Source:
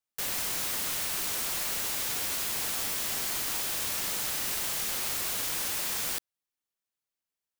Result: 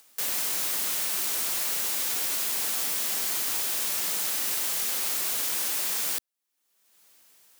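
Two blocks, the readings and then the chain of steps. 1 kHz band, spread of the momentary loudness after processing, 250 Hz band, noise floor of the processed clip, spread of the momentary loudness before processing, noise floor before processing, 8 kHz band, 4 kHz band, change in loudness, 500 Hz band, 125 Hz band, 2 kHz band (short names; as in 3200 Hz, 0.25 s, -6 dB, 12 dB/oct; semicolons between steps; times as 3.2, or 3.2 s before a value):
0.0 dB, 0 LU, -1.5 dB, -77 dBFS, 0 LU, under -85 dBFS, +3.5 dB, +1.5 dB, +3.5 dB, 0.0 dB, n/a, +0.5 dB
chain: HPF 190 Hz 12 dB/oct; high shelf 5100 Hz +4.5 dB; upward compressor, threshold -35 dBFS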